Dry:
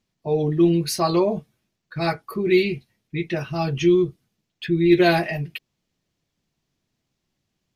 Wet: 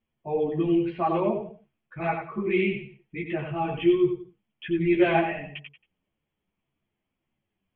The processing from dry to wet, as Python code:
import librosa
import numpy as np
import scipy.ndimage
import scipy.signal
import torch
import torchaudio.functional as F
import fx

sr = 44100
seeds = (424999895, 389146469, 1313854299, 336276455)

y = scipy.signal.sosfilt(scipy.signal.cheby1(6, 3, 3300.0, 'lowpass', fs=sr, output='sos'), x)
y = fx.echo_feedback(y, sr, ms=91, feedback_pct=26, wet_db=-6)
y = fx.ensemble(y, sr)